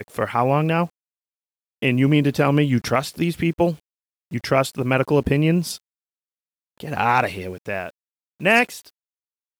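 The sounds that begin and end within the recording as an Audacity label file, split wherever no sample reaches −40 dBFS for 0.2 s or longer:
1.820000	3.760000	sound
4.310000	5.770000	sound
6.800000	7.900000	sound
8.400000	8.890000	sound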